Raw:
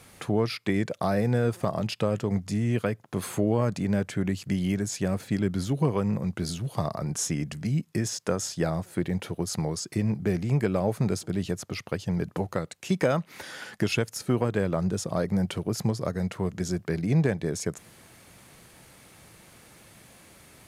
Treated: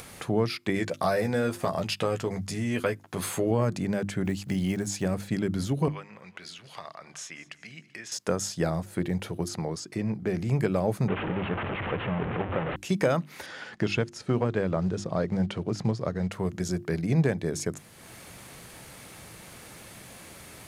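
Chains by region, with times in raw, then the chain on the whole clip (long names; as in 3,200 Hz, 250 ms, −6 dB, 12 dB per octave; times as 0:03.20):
0:00.75–0:03.51: tilt shelving filter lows −3 dB, about 680 Hz + double-tracking delay 12 ms −6 dB
0:04.23–0:05.05: one scale factor per block 7 bits + parametric band 810 Hz +6.5 dB 0.24 octaves
0:05.88–0:08.12: resonant band-pass 2,300 Hz, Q 1.3 + repeating echo 192 ms, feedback 43%, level −20.5 dB
0:09.48–0:10.37: low-pass filter 4,000 Hz 6 dB per octave + low-shelf EQ 100 Hz −10.5 dB
0:11.08–0:12.76: linear delta modulator 16 kbit/s, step −22 dBFS + high-pass filter 700 Hz 6 dB per octave + spectral tilt −4 dB per octave
0:13.46–0:16.31: floating-point word with a short mantissa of 4 bits + high-frequency loss of the air 99 metres
whole clip: mains-hum notches 50/100/150/200/250/300/350 Hz; upward compression, threshold −38 dBFS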